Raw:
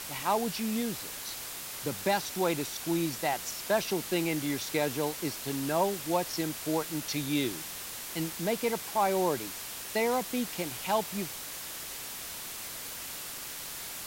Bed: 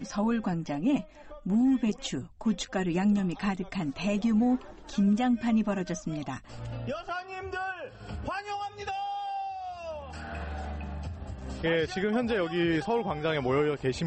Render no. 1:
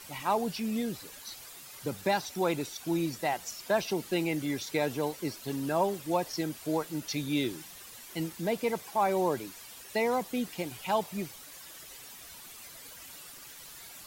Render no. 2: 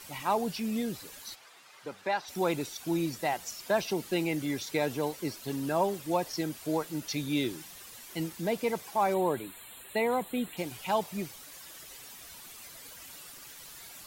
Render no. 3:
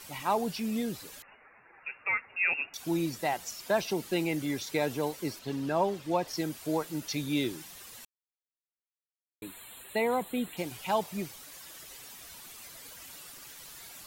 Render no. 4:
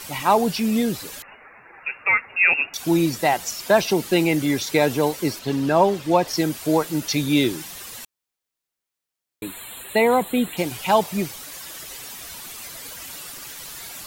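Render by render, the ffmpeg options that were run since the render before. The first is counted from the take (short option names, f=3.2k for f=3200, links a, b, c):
-af "afftdn=nr=11:nf=-41"
-filter_complex "[0:a]asplit=3[a][b][c];[a]afade=t=out:st=1.34:d=0.02[d];[b]bandpass=f=1.3k:t=q:w=0.59,afade=t=in:st=1.34:d=0.02,afade=t=out:st=2.27:d=0.02[e];[c]afade=t=in:st=2.27:d=0.02[f];[d][e][f]amix=inputs=3:normalize=0,asettb=1/sr,asplit=3[g][h][i];[g]atrim=end=9.144[j];[h]atrim=start=9.14:end=10.57,asetpts=PTS-STARTPTS,afade=t=in:d=0.004:c=qsin,afade=t=out:st=1.426:d=0.004:c=qsin,asuperstop=centerf=5500:order=20:qfactor=2[k];[i]atrim=start=10.566[l];[j][k]acrossfade=d=0.004:c1=hsin:c2=qsin[m];[m][l]acrossfade=d=0.004:c1=qsin:c2=hsin"
-filter_complex "[0:a]asettb=1/sr,asplit=3[a][b][c];[a]atrim=end=1.224[d];[b]atrim=start=1.22:end=2.74,asetpts=PTS-STARTPTS,afade=t=in:d=0.004:c=qsin,afade=t=out:st=1.516:d=0.004:c=qsin,lowpass=f=2.5k:t=q:w=0.5098,lowpass=f=2.5k:t=q:w=0.6013,lowpass=f=2.5k:t=q:w=0.9,lowpass=f=2.5k:t=q:w=2.563,afreqshift=-2900[e];[c]atrim=start=2.736[f];[d][e]acrossfade=d=0.004:c1=hsin:c2=qsin[g];[g][f]acrossfade=d=0.004:c1=qsin:c2=hsin,asettb=1/sr,asplit=3[h][i][j];[h]atrim=end=5.394[k];[i]atrim=start=5.39:end=6.28,asetpts=PTS-STARTPTS,afade=t=in:d=0.004:c=qsin,afade=t=out:st=0.886:d=0.004:c=qsin,acrossover=split=5900[l][m];[m]acompressor=threshold=-59dB:ratio=4:attack=1:release=60[n];[l][n]amix=inputs=2:normalize=0[o];[j]atrim=start=6.276[p];[k][o]acrossfade=d=0.004:c1=hsin:c2=qsin[q];[q][p]acrossfade=d=0.004:c1=qsin:c2=hsin,asplit=3[r][s][t];[r]atrim=end=8.05,asetpts=PTS-STARTPTS,afade=t=out:st=8.046:d=0.004:c=hsin[u];[s]atrim=start=8.05:end=9.42,asetpts=PTS-STARTPTS,volume=0[v];[t]atrim=start=9.42,asetpts=PTS-STARTPTS,afade=t=in:d=0.004:c=hsin[w];[u][v][w]concat=n=3:v=0:a=1"
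-af "volume=11dB"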